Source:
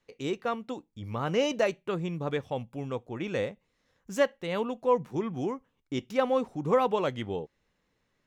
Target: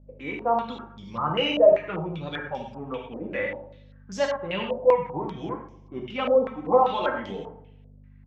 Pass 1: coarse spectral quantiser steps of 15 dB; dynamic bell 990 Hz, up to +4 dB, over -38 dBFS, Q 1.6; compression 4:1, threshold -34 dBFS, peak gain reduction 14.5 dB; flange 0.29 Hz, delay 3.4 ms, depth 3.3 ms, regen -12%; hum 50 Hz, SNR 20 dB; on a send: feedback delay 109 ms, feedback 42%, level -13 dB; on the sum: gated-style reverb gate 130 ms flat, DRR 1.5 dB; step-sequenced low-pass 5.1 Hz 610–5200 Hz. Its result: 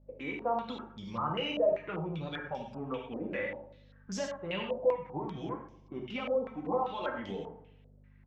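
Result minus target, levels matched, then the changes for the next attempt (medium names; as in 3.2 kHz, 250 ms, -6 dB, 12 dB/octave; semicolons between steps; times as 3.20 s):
compression: peak gain reduction +14.5 dB
remove: compression 4:1, threshold -34 dBFS, peak gain reduction 14.5 dB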